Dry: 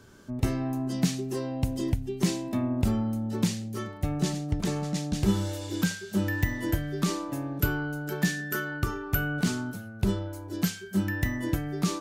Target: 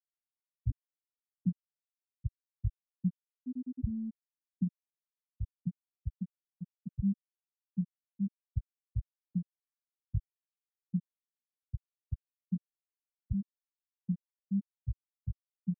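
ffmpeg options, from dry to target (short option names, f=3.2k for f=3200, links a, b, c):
-filter_complex "[0:a]atempo=0.76,acrossover=split=840[a][b];[a]adelay=120[c];[c][b]amix=inputs=2:normalize=0,afftfilt=real='re*gte(hypot(re,im),0.501)':imag='im*gte(hypot(re,im),0.501)':win_size=1024:overlap=0.75,volume=-6dB"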